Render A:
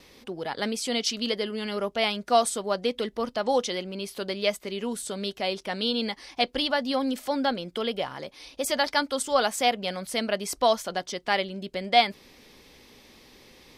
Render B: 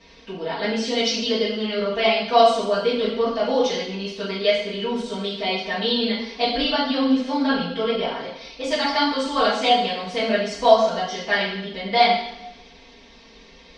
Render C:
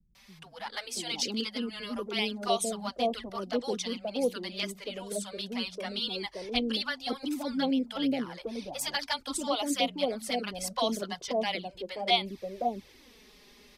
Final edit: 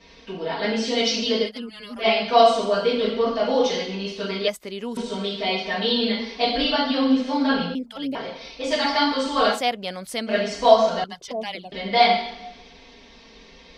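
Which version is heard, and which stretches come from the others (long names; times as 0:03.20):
B
0:01.47–0:02.03: punch in from C, crossfade 0.10 s
0:04.48–0:04.97: punch in from A
0:07.75–0:08.15: punch in from C
0:09.57–0:10.31: punch in from A, crossfade 0.10 s
0:11.04–0:11.72: punch in from C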